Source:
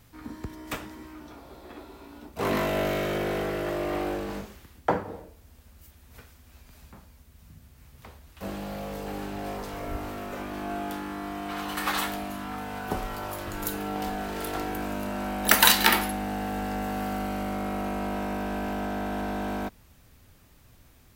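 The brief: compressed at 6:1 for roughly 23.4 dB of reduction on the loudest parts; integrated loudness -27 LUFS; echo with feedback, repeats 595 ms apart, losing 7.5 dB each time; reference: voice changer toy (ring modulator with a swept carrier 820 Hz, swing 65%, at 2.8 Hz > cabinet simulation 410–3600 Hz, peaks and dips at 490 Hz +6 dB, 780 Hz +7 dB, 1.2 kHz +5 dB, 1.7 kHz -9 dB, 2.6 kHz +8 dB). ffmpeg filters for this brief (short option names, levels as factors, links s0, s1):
-af "acompressor=threshold=0.01:ratio=6,aecho=1:1:595|1190|1785|2380|2975:0.422|0.177|0.0744|0.0312|0.0131,aeval=exprs='val(0)*sin(2*PI*820*n/s+820*0.65/2.8*sin(2*PI*2.8*n/s))':c=same,highpass=410,equalizer=f=490:t=q:w=4:g=6,equalizer=f=780:t=q:w=4:g=7,equalizer=f=1200:t=q:w=4:g=5,equalizer=f=1700:t=q:w=4:g=-9,equalizer=f=2600:t=q:w=4:g=8,lowpass=f=3600:w=0.5412,lowpass=f=3600:w=1.3066,volume=6.31"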